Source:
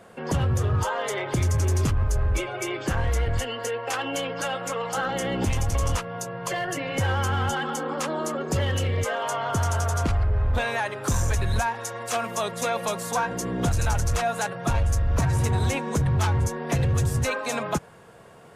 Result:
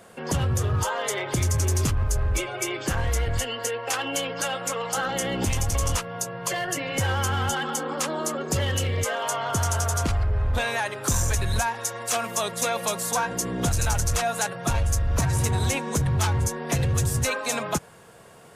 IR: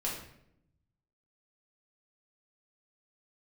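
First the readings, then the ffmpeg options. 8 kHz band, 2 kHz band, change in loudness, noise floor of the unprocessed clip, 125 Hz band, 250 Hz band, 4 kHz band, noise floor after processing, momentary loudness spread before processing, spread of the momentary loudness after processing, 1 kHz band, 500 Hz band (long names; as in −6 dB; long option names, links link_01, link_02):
+6.0 dB, +0.5 dB, +0.5 dB, −39 dBFS, −1.0 dB, −1.0 dB, +3.0 dB, −39 dBFS, 5 LU, 4 LU, −0.5 dB, −1.0 dB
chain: -af "highshelf=frequency=3800:gain=9,volume=-1dB"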